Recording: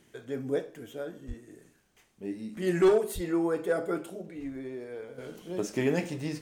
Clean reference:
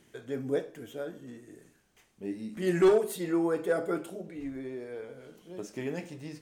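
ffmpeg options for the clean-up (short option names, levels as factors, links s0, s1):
-filter_complex "[0:a]adeclick=t=4,asplit=3[s0][s1][s2];[s0]afade=t=out:st=1.27:d=0.02[s3];[s1]highpass=f=140:w=0.5412,highpass=f=140:w=1.3066,afade=t=in:st=1.27:d=0.02,afade=t=out:st=1.39:d=0.02[s4];[s2]afade=t=in:st=1.39:d=0.02[s5];[s3][s4][s5]amix=inputs=3:normalize=0,asplit=3[s6][s7][s8];[s6]afade=t=out:st=3.14:d=0.02[s9];[s7]highpass=f=140:w=0.5412,highpass=f=140:w=1.3066,afade=t=in:st=3.14:d=0.02,afade=t=out:st=3.26:d=0.02[s10];[s8]afade=t=in:st=3.26:d=0.02[s11];[s9][s10][s11]amix=inputs=3:normalize=0,asetnsamples=n=441:p=0,asendcmd='5.18 volume volume -8dB',volume=1"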